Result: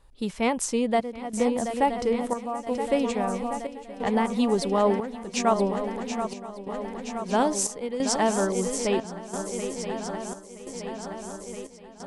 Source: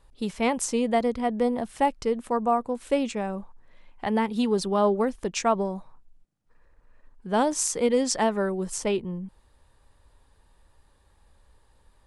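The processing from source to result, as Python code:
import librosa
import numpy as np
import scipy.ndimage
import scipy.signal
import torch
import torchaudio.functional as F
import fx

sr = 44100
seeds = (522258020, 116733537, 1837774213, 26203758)

y = fx.echo_swing(x, sr, ms=972, ratio=3, feedback_pct=68, wet_db=-9)
y = fx.chopper(y, sr, hz=0.75, depth_pct=65, duty_pct=75)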